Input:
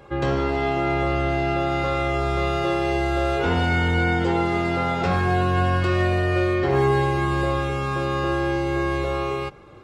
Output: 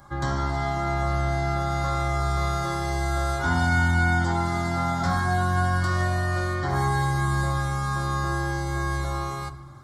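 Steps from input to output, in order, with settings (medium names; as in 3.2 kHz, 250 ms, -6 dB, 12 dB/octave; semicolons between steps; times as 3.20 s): treble shelf 3.4 kHz +10 dB; static phaser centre 1.1 kHz, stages 4; reverberation RT60 1.0 s, pre-delay 7 ms, DRR 11 dB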